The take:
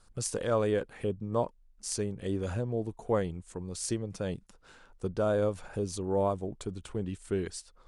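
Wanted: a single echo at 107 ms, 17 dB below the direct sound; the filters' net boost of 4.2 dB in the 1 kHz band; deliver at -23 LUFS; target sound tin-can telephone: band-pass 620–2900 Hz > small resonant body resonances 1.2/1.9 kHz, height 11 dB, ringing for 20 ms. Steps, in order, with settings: band-pass 620–2900 Hz; peaking EQ 1 kHz +6.5 dB; delay 107 ms -17 dB; small resonant body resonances 1.2/1.9 kHz, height 11 dB, ringing for 20 ms; trim +10.5 dB

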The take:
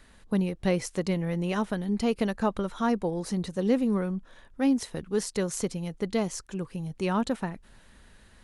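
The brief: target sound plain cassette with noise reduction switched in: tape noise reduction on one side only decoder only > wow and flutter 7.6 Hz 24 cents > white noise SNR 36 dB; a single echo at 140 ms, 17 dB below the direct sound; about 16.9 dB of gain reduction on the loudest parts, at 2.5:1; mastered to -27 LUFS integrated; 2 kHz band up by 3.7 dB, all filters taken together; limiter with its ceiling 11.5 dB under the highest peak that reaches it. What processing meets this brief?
peaking EQ 2 kHz +4.5 dB; compression 2.5:1, threshold -46 dBFS; peak limiter -38 dBFS; delay 140 ms -17 dB; tape noise reduction on one side only decoder only; wow and flutter 7.6 Hz 24 cents; white noise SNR 36 dB; trim +20.5 dB

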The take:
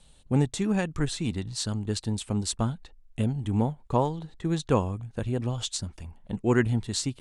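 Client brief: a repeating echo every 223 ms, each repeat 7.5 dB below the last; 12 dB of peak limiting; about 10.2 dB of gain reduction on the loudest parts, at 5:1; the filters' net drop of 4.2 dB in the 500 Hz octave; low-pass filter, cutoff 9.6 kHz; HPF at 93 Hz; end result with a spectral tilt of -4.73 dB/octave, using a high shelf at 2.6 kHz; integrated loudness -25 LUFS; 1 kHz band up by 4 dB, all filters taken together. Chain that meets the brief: high-pass 93 Hz; low-pass 9.6 kHz; peaking EQ 500 Hz -7 dB; peaking EQ 1 kHz +6 dB; treble shelf 2.6 kHz +5.5 dB; compression 5:1, threshold -30 dBFS; peak limiter -28 dBFS; feedback delay 223 ms, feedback 42%, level -7.5 dB; trim +12.5 dB

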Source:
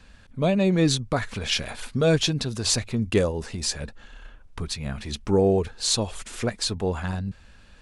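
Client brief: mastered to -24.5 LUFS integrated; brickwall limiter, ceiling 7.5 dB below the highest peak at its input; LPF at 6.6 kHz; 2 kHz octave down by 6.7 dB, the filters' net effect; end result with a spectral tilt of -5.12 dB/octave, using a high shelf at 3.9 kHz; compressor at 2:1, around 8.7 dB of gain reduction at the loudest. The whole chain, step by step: low-pass 6.6 kHz; peaking EQ 2 kHz -8 dB; treble shelf 3.9 kHz -4.5 dB; compression 2:1, threshold -32 dBFS; trim +11 dB; peak limiter -14 dBFS

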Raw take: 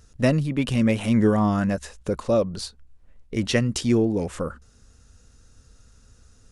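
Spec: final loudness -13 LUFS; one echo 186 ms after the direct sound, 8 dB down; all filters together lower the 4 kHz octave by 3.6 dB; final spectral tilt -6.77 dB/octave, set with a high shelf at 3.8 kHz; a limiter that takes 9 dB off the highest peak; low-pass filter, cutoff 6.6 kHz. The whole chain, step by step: low-pass 6.6 kHz; treble shelf 3.8 kHz +7 dB; peaking EQ 4 kHz -9 dB; peak limiter -15 dBFS; delay 186 ms -8 dB; trim +12 dB

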